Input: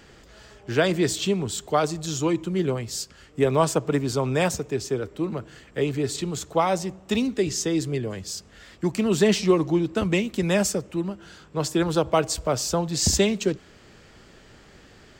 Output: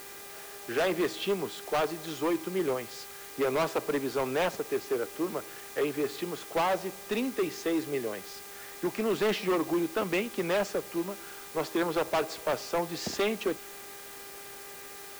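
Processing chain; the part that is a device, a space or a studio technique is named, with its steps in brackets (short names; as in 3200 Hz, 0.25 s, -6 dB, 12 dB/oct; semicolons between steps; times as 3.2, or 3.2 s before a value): aircraft radio (BPF 370–2500 Hz; hard clip -23.5 dBFS, distortion -8 dB; buzz 400 Hz, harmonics 6, -51 dBFS -3 dB/oct; white noise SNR 15 dB)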